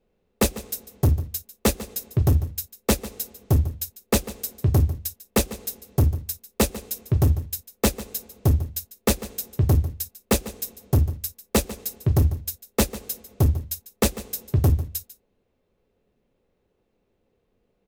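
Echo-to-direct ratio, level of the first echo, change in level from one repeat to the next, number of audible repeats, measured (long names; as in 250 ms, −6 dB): −16.0 dB, −16.0 dB, repeats not evenly spaced, 1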